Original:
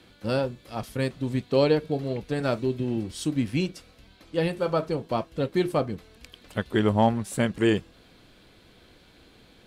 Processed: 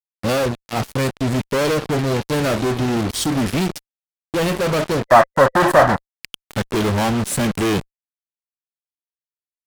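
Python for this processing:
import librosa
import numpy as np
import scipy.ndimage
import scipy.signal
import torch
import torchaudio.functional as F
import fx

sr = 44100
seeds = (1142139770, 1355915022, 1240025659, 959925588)

y = fx.fuzz(x, sr, gain_db=41.0, gate_db=-39.0)
y = fx.spec_box(y, sr, start_s=5.06, length_s=0.93, low_hz=530.0, high_hz=2000.0, gain_db=12)
y = fx.vibrato(y, sr, rate_hz=1.4, depth_cents=34.0)
y = y * librosa.db_to_amplitude(-3.5)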